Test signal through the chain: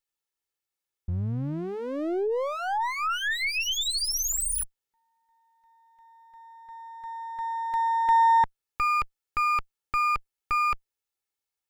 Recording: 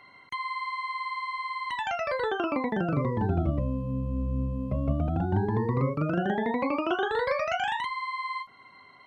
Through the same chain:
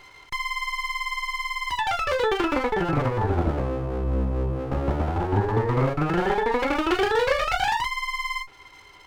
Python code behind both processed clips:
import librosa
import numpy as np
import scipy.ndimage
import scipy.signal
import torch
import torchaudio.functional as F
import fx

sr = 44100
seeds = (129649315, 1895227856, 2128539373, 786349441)

y = fx.lower_of_two(x, sr, delay_ms=2.3)
y = y * 10.0 ** (6.5 / 20.0)